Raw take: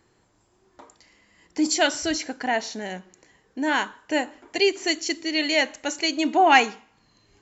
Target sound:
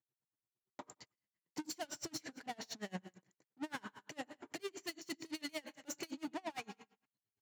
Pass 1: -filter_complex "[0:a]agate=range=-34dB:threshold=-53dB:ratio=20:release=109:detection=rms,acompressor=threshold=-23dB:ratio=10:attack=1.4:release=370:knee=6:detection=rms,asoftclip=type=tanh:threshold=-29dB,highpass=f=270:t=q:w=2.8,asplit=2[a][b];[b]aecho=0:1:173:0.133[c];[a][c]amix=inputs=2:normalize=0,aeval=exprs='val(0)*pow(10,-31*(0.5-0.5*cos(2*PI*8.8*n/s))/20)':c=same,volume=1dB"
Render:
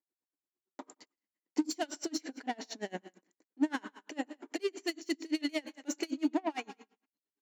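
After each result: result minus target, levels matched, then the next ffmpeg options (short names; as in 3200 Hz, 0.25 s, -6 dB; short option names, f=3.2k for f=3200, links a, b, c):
125 Hz band -11.5 dB; soft clip: distortion -7 dB
-filter_complex "[0:a]agate=range=-34dB:threshold=-53dB:ratio=20:release=109:detection=rms,acompressor=threshold=-23dB:ratio=10:attack=1.4:release=370:knee=6:detection=rms,asoftclip=type=tanh:threshold=-29dB,highpass=f=130:t=q:w=2.8,asplit=2[a][b];[b]aecho=0:1:173:0.133[c];[a][c]amix=inputs=2:normalize=0,aeval=exprs='val(0)*pow(10,-31*(0.5-0.5*cos(2*PI*8.8*n/s))/20)':c=same,volume=1dB"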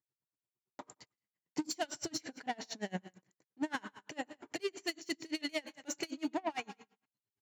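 soft clip: distortion -7 dB
-filter_complex "[0:a]agate=range=-34dB:threshold=-53dB:ratio=20:release=109:detection=rms,acompressor=threshold=-23dB:ratio=10:attack=1.4:release=370:knee=6:detection=rms,asoftclip=type=tanh:threshold=-38dB,highpass=f=130:t=q:w=2.8,asplit=2[a][b];[b]aecho=0:1:173:0.133[c];[a][c]amix=inputs=2:normalize=0,aeval=exprs='val(0)*pow(10,-31*(0.5-0.5*cos(2*PI*8.8*n/s))/20)':c=same,volume=1dB"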